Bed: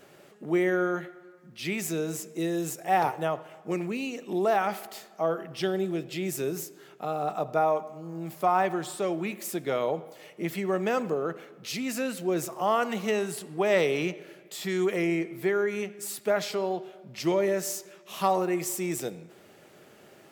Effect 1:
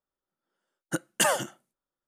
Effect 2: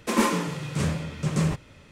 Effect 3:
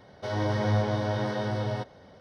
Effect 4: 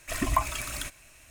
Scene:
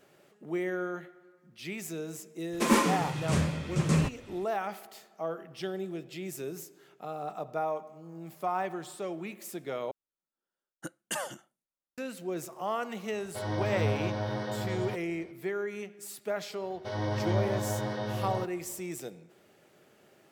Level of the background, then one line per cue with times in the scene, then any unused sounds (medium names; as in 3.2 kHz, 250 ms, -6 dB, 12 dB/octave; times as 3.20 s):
bed -7.5 dB
2.53 s: add 2 -1.5 dB
9.91 s: replace with 1 -11 dB
13.12 s: add 3 -4.5 dB
16.62 s: add 3 -4 dB + band-stop 1.4 kHz, Q 20
not used: 4